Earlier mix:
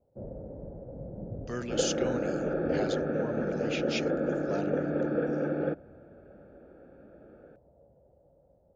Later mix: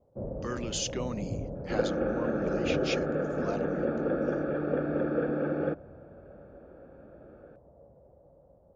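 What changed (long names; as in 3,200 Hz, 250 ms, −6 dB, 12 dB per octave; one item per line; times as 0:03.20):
speech: entry −1.05 s
first sound +4.5 dB
master: add parametric band 1,100 Hz +9.5 dB 0.27 octaves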